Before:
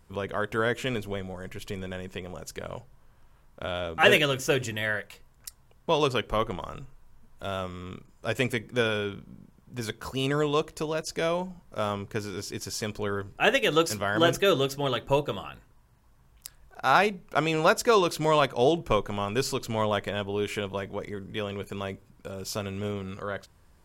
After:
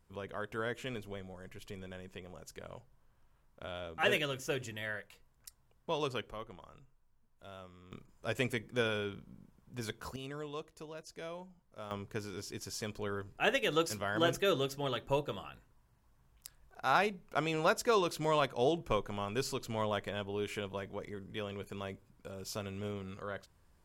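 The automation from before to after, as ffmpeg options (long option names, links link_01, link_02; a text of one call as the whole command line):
ffmpeg -i in.wav -af "asetnsamples=nb_out_samples=441:pad=0,asendcmd='6.31 volume volume -18dB;7.92 volume volume -7dB;10.16 volume volume -17dB;11.91 volume volume -8dB',volume=-11dB" out.wav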